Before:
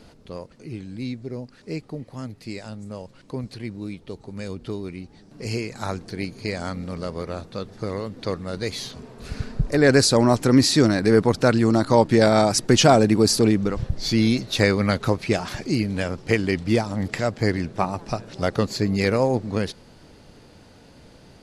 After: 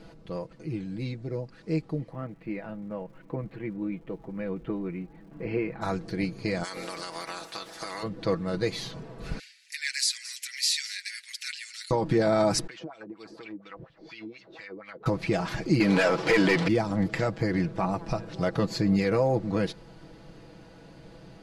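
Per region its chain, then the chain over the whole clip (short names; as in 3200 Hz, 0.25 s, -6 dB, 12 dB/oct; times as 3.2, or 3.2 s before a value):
2.1–5.81 LPF 2500 Hz 24 dB/oct + bell 99 Hz -10.5 dB 0.54 oct + crackle 280/s -53 dBFS
6.63–8.02 spectral limiter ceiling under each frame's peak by 18 dB + RIAA curve recording + compressor 5:1, threshold -30 dBFS
9.39–11.91 steep high-pass 2000 Hz 48 dB/oct + high shelf 7200 Hz +10.5 dB + echo 0.218 s -19.5 dB
12.67–15.06 wah 4.2 Hz 310–3400 Hz, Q 3.2 + compressor 8:1, threshold -38 dBFS
15.8–16.68 low shelf 160 Hz -8 dB + overdrive pedal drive 27 dB, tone 4400 Hz, clips at -4.5 dBFS
whole clip: high shelf 4100 Hz -10 dB; limiter -15 dBFS; comb 6.1 ms, depth 67%; gain -1 dB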